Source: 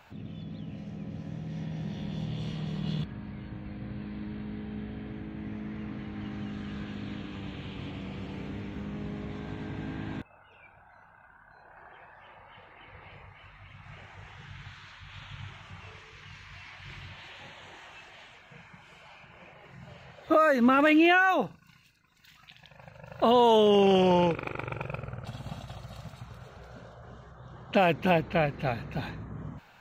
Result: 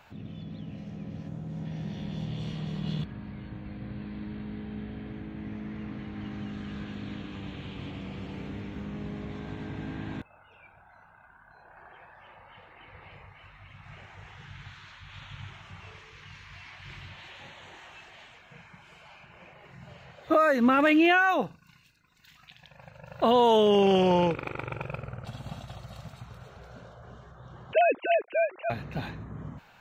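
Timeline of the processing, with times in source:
1.28–1.65 s: time-frequency box 1.6–6.4 kHz -7 dB
27.73–28.70 s: formants replaced by sine waves

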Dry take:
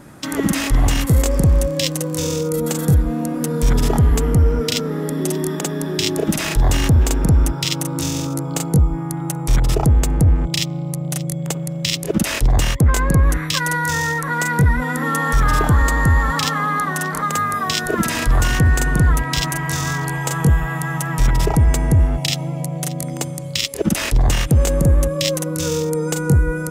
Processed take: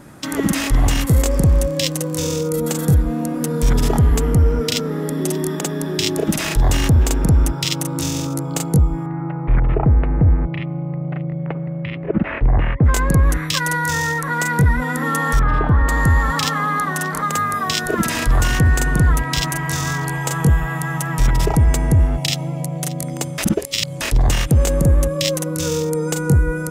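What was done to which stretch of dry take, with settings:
9.06–12.85 s: steep low-pass 2.3 kHz
15.39–15.89 s: distance through air 430 m
23.38–24.01 s: reverse

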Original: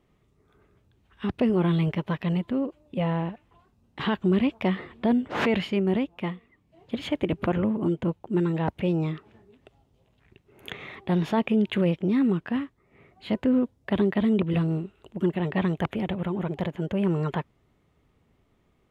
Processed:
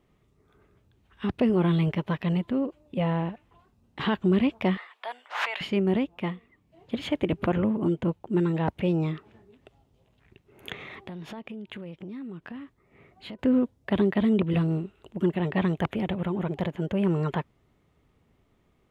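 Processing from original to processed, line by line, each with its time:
4.77–5.61 s: high-pass 800 Hz 24 dB/octave
10.73–13.39 s: compression, threshold -37 dBFS

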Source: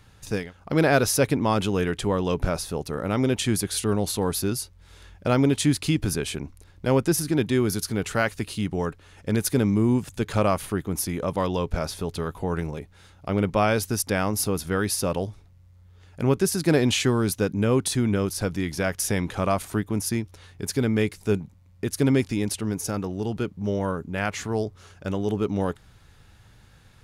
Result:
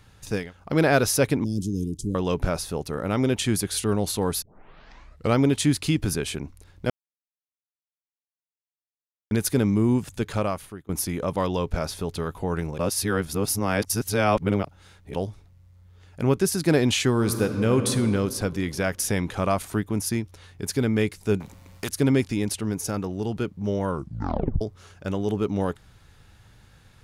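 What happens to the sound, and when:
1.44–2.15 s: Chebyshev band-stop 300–5500 Hz, order 3
4.42 s: tape start 0.95 s
6.90–9.31 s: mute
10.15–10.89 s: fade out, to -23.5 dB
12.78–15.14 s: reverse
17.10–17.89 s: reverb throw, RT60 2.4 s, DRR 6 dB
21.40–21.89 s: spectrum-flattening compressor 2:1
23.89 s: tape stop 0.72 s

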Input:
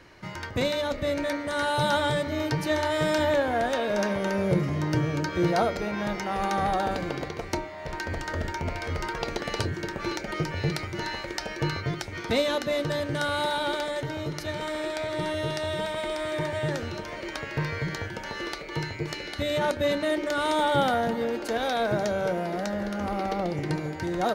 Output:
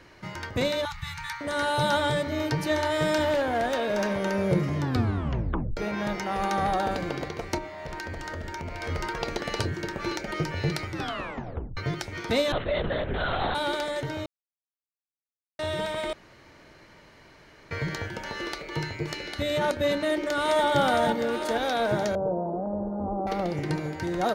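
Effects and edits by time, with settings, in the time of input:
0.85–1.41 s: Chebyshev band-stop 170–840 Hz, order 5
3.21–4.18 s: hard clipper -21 dBFS
4.77 s: tape stop 1.00 s
7.58–8.83 s: compression, threshold -31 dBFS
10.89 s: tape stop 0.88 s
12.52–13.55 s: LPC vocoder at 8 kHz whisper
14.26–15.59 s: mute
16.13–17.71 s: room tone
20.01–20.66 s: echo throw 460 ms, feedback 55%, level -3.5 dB
22.15–23.27 s: steep low-pass 970 Hz

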